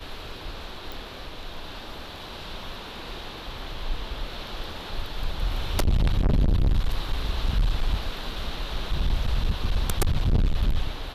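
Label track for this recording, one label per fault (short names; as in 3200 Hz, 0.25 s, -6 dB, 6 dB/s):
0.920000	0.920000	pop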